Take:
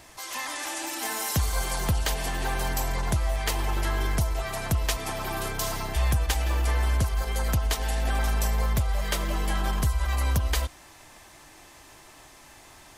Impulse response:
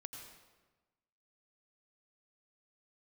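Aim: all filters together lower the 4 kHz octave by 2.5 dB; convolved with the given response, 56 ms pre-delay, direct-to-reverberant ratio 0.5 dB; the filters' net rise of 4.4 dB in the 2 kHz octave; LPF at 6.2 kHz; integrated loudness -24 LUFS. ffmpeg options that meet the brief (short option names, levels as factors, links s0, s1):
-filter_complex "[0:a]lowpass=6200,equalizer=f=2000:t=o:g=6.5,equalizer=f=4000:t=o:g=-5,asplit=2[s0][s1];[1:a]atrim=start_sample=2205,adelay=56[s2];[s1][s2]afir=irnorm=-1:irlink=0,volume=1.5[s3];[s0][s3]amix=inputs=2:normalize=0,volume=1.12"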